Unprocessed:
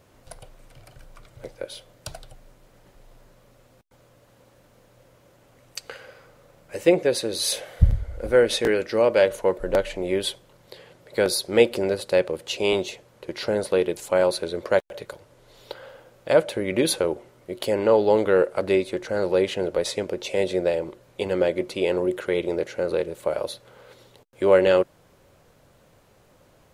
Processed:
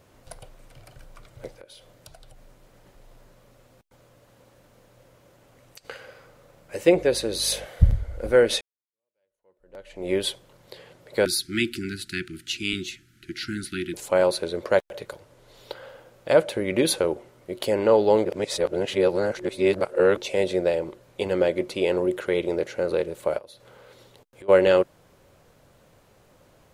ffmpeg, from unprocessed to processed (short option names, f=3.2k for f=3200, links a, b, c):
-filter_complex "[0:a]asettb=1/sr,asplit=3[a][b][c];[a]atrim=end=1.554[d];[b]atrim=start=1.55:end=5.85,asetpts=PTS-STARTPTS,afade=t=in:d=0.004:c=qsin,afade=t=out:st=4.296:d=0.004:c=qsin,acompressor=threshold=-45dB:ratio=4:attack=3.2:release=140:knee=1:detection=peak[e];[c]atrim=start=5.846[f];[d][e]acrossfade=d=0.004:c1=hsin:c2=qsin[g];[g][f]acrossfade=d=0.004:c1=qsin:c2=hsin,asettb=1/sr,asplit=3[h][i][j];[h]atrim=end=6.944[k];[i]atrim=start=6.94:end=7.66,asetpts=PTS-STARTPTS,afade=t=in:d=0.004:c=qsin,afade=t=out:st=0.716:d=0.004:c=qsin,aeval=exprs='val(0)+0.00631*(sin(2*PI*50*n/s)+sin(2*PI*2*50*n/s)/2+sin(2*PI*3*50*n/s)/3+sin(2*PI*4*50*n/s)/4+sin(2*PI*5*50*n/s)/5)':c=same[l];[j]atrim=start=7.656[m];[k][l]acrossfade=d=0.004:c1=hsin:c2=qsin[n];[n][m]acrossfade=d=0.004:c1=qsin:c2=hsin,asettb=1/sr,asplit=3[o][p][q];[o]atrim=end=11.254[r];[p]atrim=start=11.25:end=13.94,asetpts=PTS-STARTPTS,afade=t=in:d=0.004:c=qsin,afade=t=out:st=2.686:d=0.004:c=qsin,asuperstop=centerf=690:order=20:qfactor=0.71[s];[q]atrim=start=13.936[t];[r][s]acrossfade=d=0.004:c1=hsin:c2=qsin[u];[u][t]acrossfade=d=0.004:c1=qsin:c2=hsin,asplit=3[v][w][x];[v]afade=t=out:st=23.37:d=0.02[y];[w]acompressor=threshold=-45dB:ratio=4:attack=3.2:release=140:knee=1:detection=peak,afade=t=in:st=23.37:d=0.02,afade=t=out:st=24.48:d=0.02[z];[x]afade=t=in:st=24.48:d=0.02[aa];[y][z][aa]amix=inputs=3:normalize=0,asplit=4[ab][ac][ad][ae];[ab]atrim=end=8.61,asetpts=PTS-STARTPTS,afade=t=out:st=8.606:d=0.004:c=hsin[af];[ac]atrim=start=8.61:end=18.252,asetpts=PTS-STARTPTS,afade=t=in:d=1.49:c=exp[ag];[ad]atrim=start=18.248:end=20.172,asetpts=PTS-STARTPTS,areverse[ah];[ae]atrim=start=20.168[ai];[af][ag]concat=n=2:v=0:a=1[aj];[aj][ah]acrossfade=d=0.004:c1=hsin:c2=hsin[ak];[ak][ai]acrossfade=d=0.004:c1=hsin:c2=hsin"